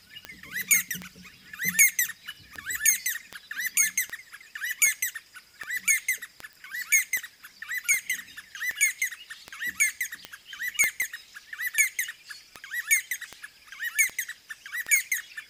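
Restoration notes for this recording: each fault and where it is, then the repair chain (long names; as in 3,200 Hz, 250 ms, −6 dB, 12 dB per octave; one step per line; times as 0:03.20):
scratch tick 78 rpm −18 dBFS
0:06.53: click
0:10.84: click −8 dBFS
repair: click removal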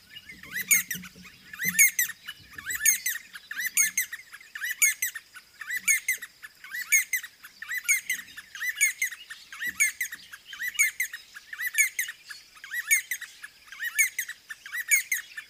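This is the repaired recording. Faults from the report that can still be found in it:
none of them is left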